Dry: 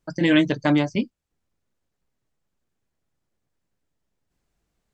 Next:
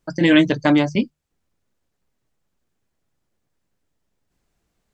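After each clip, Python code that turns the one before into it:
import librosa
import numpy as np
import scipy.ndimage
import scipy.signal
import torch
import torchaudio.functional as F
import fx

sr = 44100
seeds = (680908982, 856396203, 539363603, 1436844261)

y = fx.hum_notches(x, sr, base_hz=50, count=3)
y = F.gain(torch.from_numpy(y), 4.0).numpy()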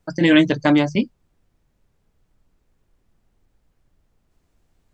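y = fx.dmg_noise_colour(x, sr, seeds[0], colour='brown', level_db=-63.0)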